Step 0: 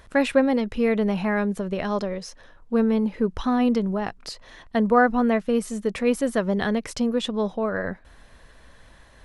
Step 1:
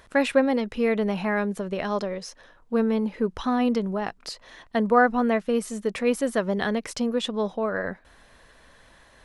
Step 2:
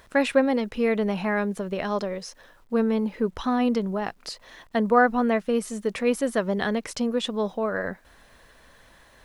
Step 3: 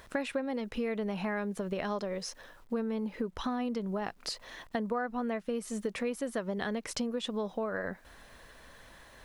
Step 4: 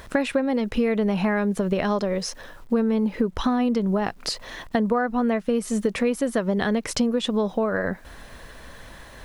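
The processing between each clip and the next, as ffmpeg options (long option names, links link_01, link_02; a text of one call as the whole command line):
ffmpeg -i in.wav -af "lowshelf=frequency=160:gain=-8.5" out.wav
ffmpeg -i in.wav -af "acrusher=bits=10:mix=0:aa=0.000001" out.wav
ffmpeg -i in.wav -af "acompressor=threshold=-31dB:ratio=6" out.wav
ffmpeg -i in.wav -af "lowshelf=frequency=300:gain=5,volume=9dB" out.wav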